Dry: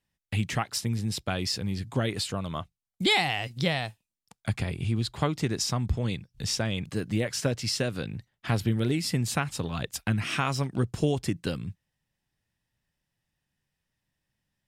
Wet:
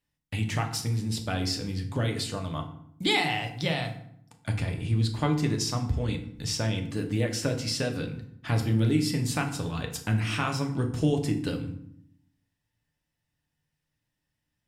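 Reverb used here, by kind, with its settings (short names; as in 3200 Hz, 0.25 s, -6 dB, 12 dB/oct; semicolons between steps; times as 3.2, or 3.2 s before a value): FDN reverb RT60 0.67 s, low-frequency decay 1.55×, high-frequency decay 0.7×, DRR 3 dB; gain -2.5 dB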